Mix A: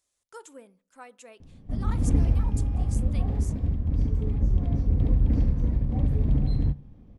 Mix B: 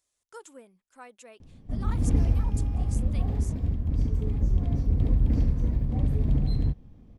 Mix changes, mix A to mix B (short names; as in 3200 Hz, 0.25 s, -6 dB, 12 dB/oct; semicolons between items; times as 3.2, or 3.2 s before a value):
background: add high shelf 4600 Hz +7.5 dB; reverb: off